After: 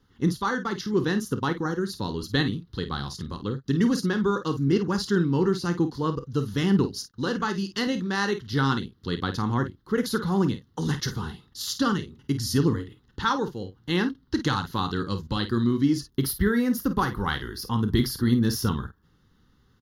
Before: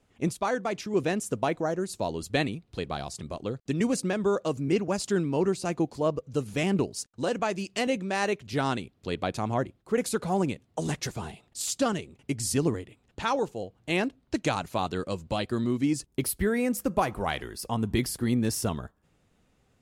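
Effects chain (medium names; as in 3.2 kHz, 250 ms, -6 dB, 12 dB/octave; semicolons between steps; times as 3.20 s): static phaser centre 2.4 kHz, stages 6; early reflections 29 ms -14.5 dB, 51 ms -10.5 dB; endings held to a fixed fall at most 550 dB/s; trim +6 dB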